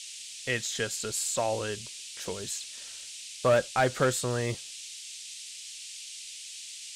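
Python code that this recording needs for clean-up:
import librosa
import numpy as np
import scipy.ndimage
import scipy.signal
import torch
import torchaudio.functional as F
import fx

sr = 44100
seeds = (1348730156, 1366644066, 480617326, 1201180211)

y = fx.fix_declip(x, sr, threshold_db=-17.0)
y = fx.noise_reduce(y, sr, print_start_s=5.34, print_end_s=5.84, reduce_db=30.0)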